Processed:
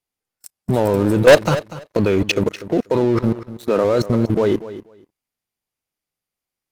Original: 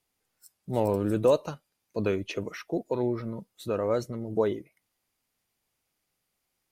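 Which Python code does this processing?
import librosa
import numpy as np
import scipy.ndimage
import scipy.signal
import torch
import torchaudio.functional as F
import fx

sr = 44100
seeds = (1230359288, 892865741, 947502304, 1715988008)

y = fx.leveller(x, sr, passes=2, at=(1.28, 1.97))
y = fx.highpass(y, sr, hz=fx.line((3.33, 300.0), (3.83, 140.0)), slope=24, at=(3.33, 3.83), fade=0.02)
y = fx.level_steps(y, sr, step_db=18)
y = fx.leveller(y, sr, passes=3)
y = fx.echo_feedback(y, sr, ms=243, feedback_pct=16, wet_db=-15)
y = F.gain(torch.from_numpy(y), 9.0).numpy()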